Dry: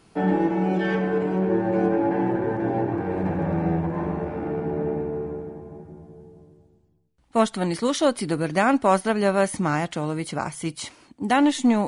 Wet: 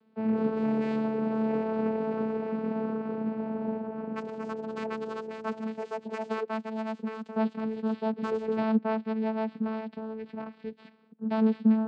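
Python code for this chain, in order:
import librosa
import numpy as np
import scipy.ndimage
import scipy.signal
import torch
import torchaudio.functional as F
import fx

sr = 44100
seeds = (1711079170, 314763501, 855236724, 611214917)

y = fx.tracing_dist(x, sr, depth_ms=0.39)
y = scipy.signal.sosfilt(scipy.signal.cheby1(5, 1.0, [170.0, 3700.0], 'bandpass', fs=sr, output='sos'), y)
y = fx.echo_pitch(y, sr, ms=238, semitones=6, count=2, db_per_echo=-3.0)
y = fx.vocoder(y, sr, bands=8, carrier='saw', carrier_hz=220.0)
y = y * 10.0 ** (-6.5 / 20.0)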